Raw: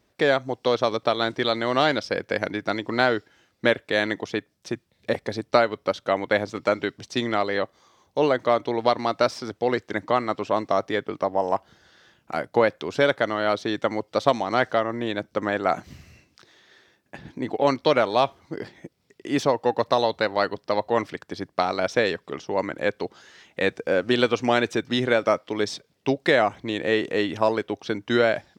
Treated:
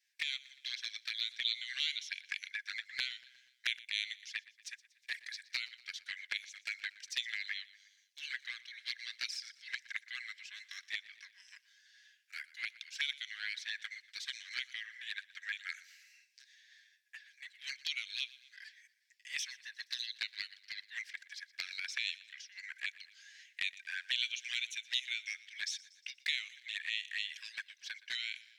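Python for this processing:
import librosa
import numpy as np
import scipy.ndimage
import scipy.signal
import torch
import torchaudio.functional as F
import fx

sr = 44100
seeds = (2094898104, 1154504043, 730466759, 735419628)

p1 = scipy.signal.sosfilt(scipy.signal.cheby1(6, 3, 1600.0, 'highpass', fs=sr, output='sos'), x)
p2 = fx.env_flanger(p1, sr, rest_ms=10.2, full_db=-30.5)
p3 = p2 + fx.echo_feedback(p2, sr, ms=119, feedback_pct=54, wet_db=-19.5, dry=0)
y = F.gain(torch.from_numpy(p3), -1.5).numpy()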